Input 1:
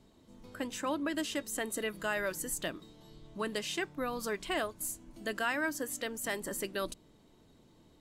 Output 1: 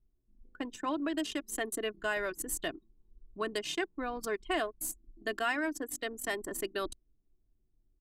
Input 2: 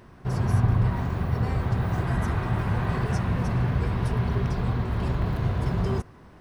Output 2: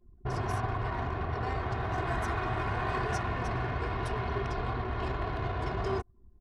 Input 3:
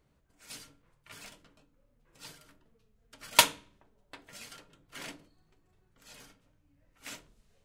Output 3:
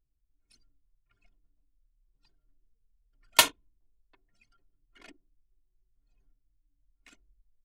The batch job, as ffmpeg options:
-filter_complex "[0:a]anlmdn=1,aecho=1:1:2.8:0.5,acrossover=split=420|1400|3100[s0][s1][s2][s3];[s0]acompressor=threshold=0.0224:ratio=5[s4];[s4][s1][s2][s3]amix=inputs=4:normalize=0"

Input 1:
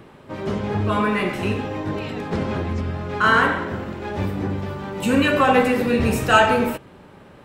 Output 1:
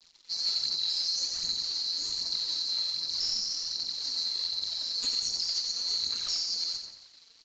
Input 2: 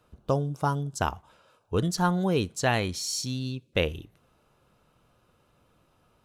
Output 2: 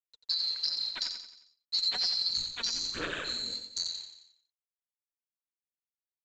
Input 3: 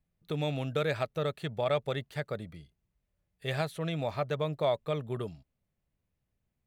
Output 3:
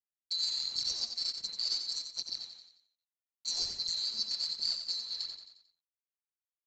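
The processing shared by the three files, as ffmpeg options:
-filter_complex "[0:a]afftfilt=real='real(if(lt(b,736),b+184*(1-2*mod(floor(b/184),2)),b),0)':imag='imag(if(lt(b,736),b+184*(1-2*mod(floor(b/184),2)),b),0)':win_size=2048:overlap=0.75,agate=range=0.0224:threshold=0.0141:ratio=3:detection=peak,lowshelf=f=110:g=-4,acrossover=split=170|2800[s0][s1][s2];[s1]alimiter=level_in=1.68:limit=0.0631:level=0:latency=1:release=230,volume=0.596[s3];[s0][s3][s2]amix=inputs=3:normalize=0,acompressor=threshold=0.0631:ratio=16,aeval=exprs='val(0)*sin(2*PI*86*n/s)':c=same,acrusher=bits=8:mix=0:aa=0.000001,aphaser=in_gain=1:out_gain=1:delay=4.5:decay=0.56:speed=1.3:type=sinusoidal,volume=10,asoftclip=hard,volume=0.1,aecho=1:1:89|178|267|356|445:0.447|0.192|0.0826|0.0355|0.0153,aresample=16000,aresample=44100,adynamicequalizer=threshold=0.00447:dfrequency=1800:dqfactor=0.7:tfrequency=1800:tqfactor=0.7:attack=5:release=100:ratio=0.375:range=1.5:mode=cutabove:tftype=highshelf"

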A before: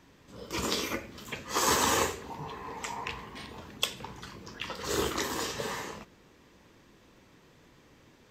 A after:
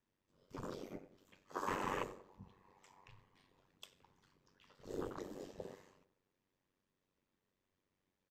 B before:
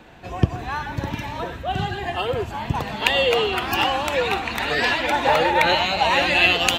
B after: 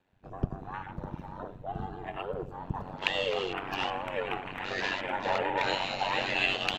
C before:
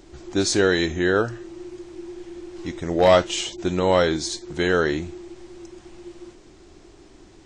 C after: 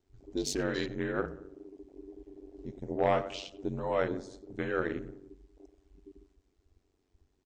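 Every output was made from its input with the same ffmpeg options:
-filter_complex "[0:a]afwtdn=0.0355,asplit=2[s0][s1];[s1]adelay=91,lowpass=f=1500:p=1,volume=0.2,asplit=2[s2][s3];[s3]adelay=91,lowpass=f=1500:p=1,volume=0.53,asplit=2[s4][s5];[s5]adelay=91,lowpass=f=1500:p=1,volume=0.53,asplit=2[s6][s7];[s7]adelay=91,lowpass=f=1500:p=1,volume=0.53,asplit=2[s8][s9];[s9]adelay=91,lowpass=f=1500:p=1,volume=0.53[s10];[s0][s2][s4][s6][s8][s10]amix=inputs=6:normalize=0,aeval=exprs='val(0)*sin(2*PI*47*n/s)':c=same,volume=0.376"

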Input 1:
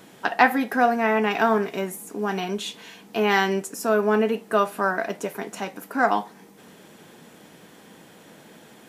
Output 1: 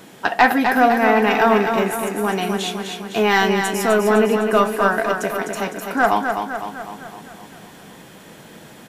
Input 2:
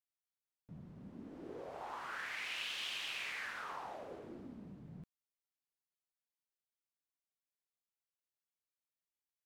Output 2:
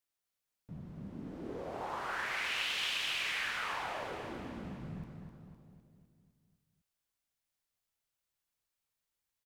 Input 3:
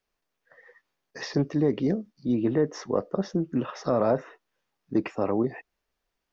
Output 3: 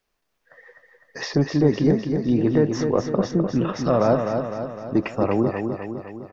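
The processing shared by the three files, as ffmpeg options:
-af "acontrast=64,aecho=1:1:254|508|762|1016|1270|1524|1778:0.501|0.281|0.157|0.088|0.0493|0.0276|0.0155,asubboost=boost=2:cutoff=150,volume=0.891"

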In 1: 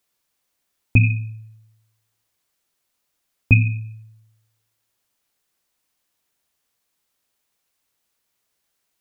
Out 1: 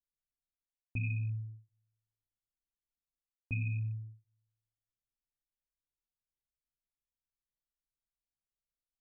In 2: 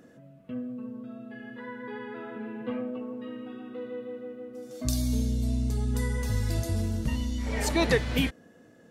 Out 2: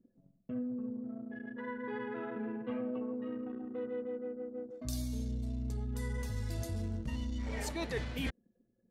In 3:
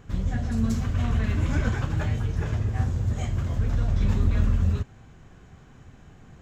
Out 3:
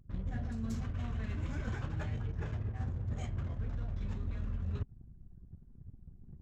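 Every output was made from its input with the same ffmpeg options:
-af "anlmdn=0.251,areverse,acompressor=threshold=0.0224:ratio=12,areverse"

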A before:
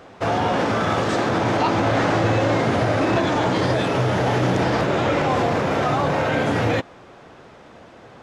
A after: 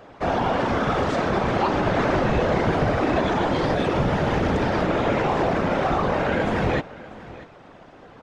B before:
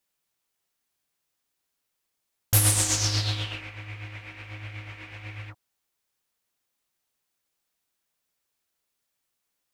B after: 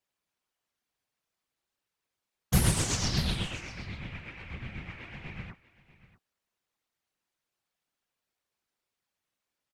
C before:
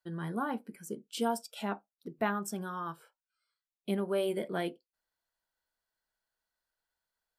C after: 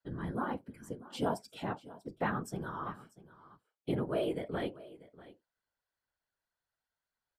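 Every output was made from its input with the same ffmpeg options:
-filter_complex "[0:a]afftfilt=real='hypot(re,im)*cos(2*PI*random(0))':imag='hypot(re,im)*sin(2*PI*random(1))':win_size=512:overlap=0.75,lowpass=f=3600:p=1,aecho=1:1:641:0.119,asplit=2[s0][s1];[s1]volume=11.2,asoftclip=hard,volume=0.0891,volume=0.335[s2];[s0][s2]amix=inputs=2:normalize=0,volume=1.26"

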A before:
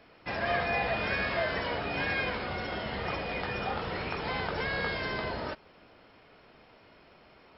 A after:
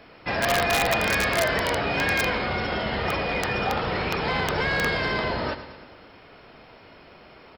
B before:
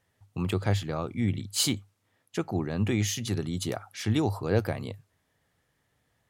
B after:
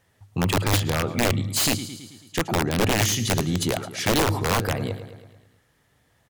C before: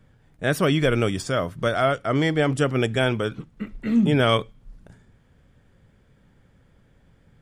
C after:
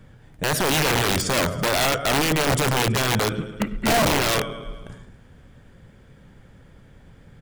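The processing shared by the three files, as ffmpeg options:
-af "alimiter=limit=0.119:level=0:latency=1:release=13,acontrast=30,aecho=1:1:109|218|327|436|545|654:0.224|0.132|0.0779|0.046|0.0271|0.016,aeval=exprs='0.299*(cos(1*acos(clip(val(0)/0.299,-1,1)))-cos(1*PI/2))+0.0237*(cos(5*acos(clip(val(0)/0.299,-1,1)))-cos(5*PI/2))':c=same,aeval=exprs='(mod(5.96*val(0)+1,2)-1)/5.96':c=same"

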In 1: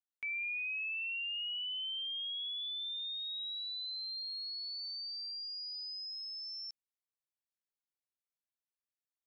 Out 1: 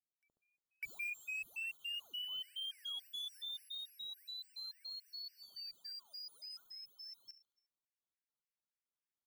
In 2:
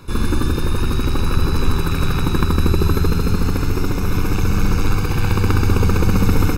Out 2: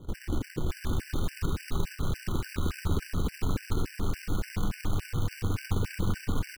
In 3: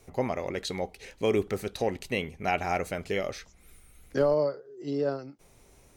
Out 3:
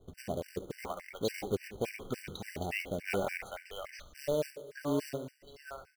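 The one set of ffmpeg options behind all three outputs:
-filter_complex "[0:a]lowpass=f=2800:p=1,areverse,acompressor=threshold=0.0708:ratio=16,areverse,acrossover=split=720[s0][s1];[s1]adelay=600[s2];[s0][s2]amix=inputs=2:normalize=0,acrusher=bits=3:mode=log:mix=0:aa=0.000001,asplit=2[s3][s4];[s4]aecho=0:1:71|142|213|284|355:0.178|0.0996|0.0558|0.0312|0.0175[s5];[s3][s5]amix=inputs=2:normalize=0,afftfilt=real='re*gt(sin(2*PI*3.5*pts/sr)*(1-2*mod(floor(b*sr/1024/1500),2)),0)':imag='im*gt(sin(2*PI*3.5*pts/sr)*(1-2*mod(floor(b*sr/1024/1500),2)),0)':win_size=1024:overlap=0.75"

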